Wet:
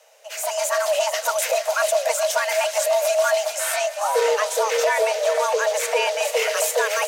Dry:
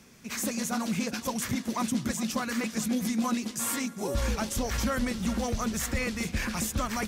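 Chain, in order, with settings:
soft clipping −19 dBFS, distortion −24 dB
automatic gain control gain up to 9.5 dB
delay with a high-pass on its return 443 ms, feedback 75%, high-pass 1,700 Hz, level −10.5 dB
frequency shifter +410 Hz
0:03.55–0:06.25: high-shelf EQ 9,000 Hz −8.5 dB

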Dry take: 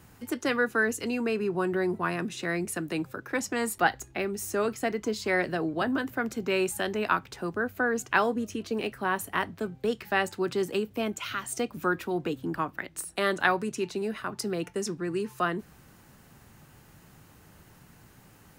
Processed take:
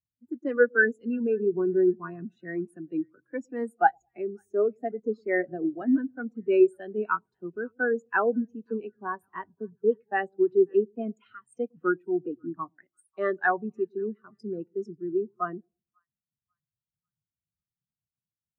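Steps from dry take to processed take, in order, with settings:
echo with a time of its own for lows and highs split 880 Hz, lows 108 ms, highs 542 ms, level −15.5 dB
every bin expanded away from the loudest bin 2.5 to 1

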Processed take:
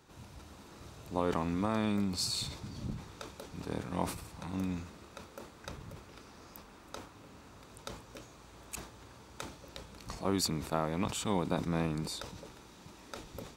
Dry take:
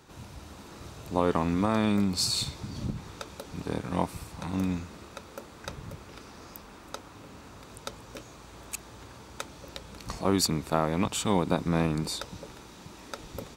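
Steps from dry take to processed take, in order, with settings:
level that may fall only so fast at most 96 dB per second
level −6.5 dB

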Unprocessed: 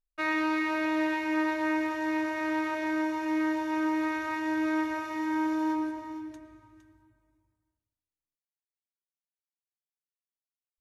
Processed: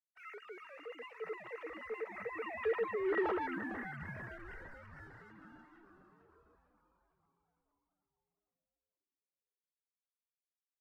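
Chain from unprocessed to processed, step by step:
three sine waves on the formant tracks
source passing by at 0:03.20, 32 m/s, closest 1.7 metres
gain on a spectral selection 0:03.46–0:06.24, 250–1,400 Hz −14 dB
reversed playback
downward compressor 6 to 1, threshold −44 dBFS, peak gain reduction 16.5 dB
reversed playback
leveller curve on the samples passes 1
hollow resonant body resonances 440/1,300/1,900/2,800 Hz, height 12 dB
on a send: echo with shifted repeats 453 ms, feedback 60%, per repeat −120 Hz, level −11 dB
on the sum: level +5 dB

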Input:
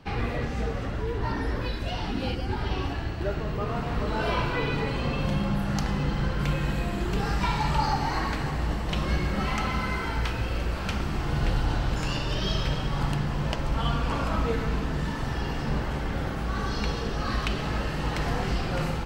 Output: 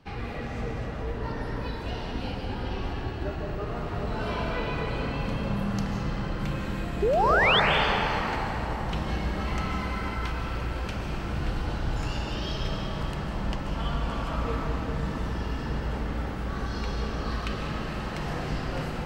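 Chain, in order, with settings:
sound drawn into the spectrogram rise, 0:07.02–0:07.60, 380–3,700 Hz −17 dBFS
comb and all-pass reverb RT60 4.7 s, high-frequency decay 0.35×, pre-delay 110 ms, DRR 0 dB
level −6 dB

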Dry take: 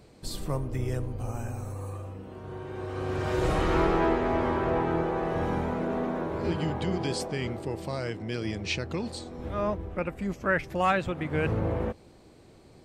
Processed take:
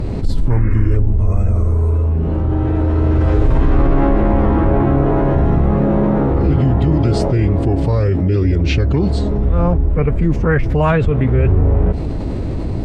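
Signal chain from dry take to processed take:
sound drawn into the spectrogram noise, 0:00.50–0:00.97, 1,100–2,600 Hz −42 dBFS
phase-vocoder pitch shift with formants kept −3 semitones
RIAA equalisation playback
envelope flattener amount 70%

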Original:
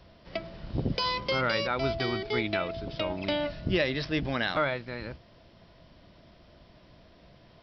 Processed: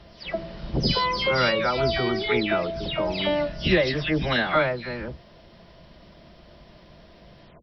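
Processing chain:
every frequency bin delayed by itself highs early, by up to 232 ms
level +6.5 dB

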